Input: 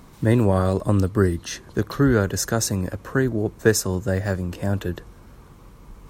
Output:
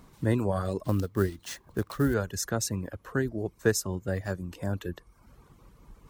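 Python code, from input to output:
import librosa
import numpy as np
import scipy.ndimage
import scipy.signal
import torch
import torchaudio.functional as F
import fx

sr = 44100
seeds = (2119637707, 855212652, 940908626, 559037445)

y = fx.dereverb_blind(x, sr, rt60_s=0.69)
y = fx.sample_hold(y, sr, seeds[0], rate_hz=13000.0, jitter_pct=20, at=(0.84, 2.14))
y = y * 10.0 ** (-7.0 / 20.0)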